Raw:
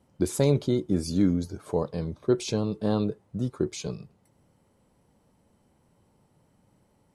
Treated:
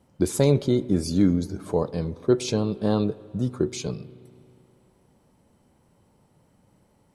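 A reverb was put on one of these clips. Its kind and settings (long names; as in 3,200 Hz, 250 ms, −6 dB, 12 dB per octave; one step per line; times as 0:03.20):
spring reverb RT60 2.6 s, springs 32/40/60 ms, chirp 40 ms, DRR 18.5 dB
level +3 dB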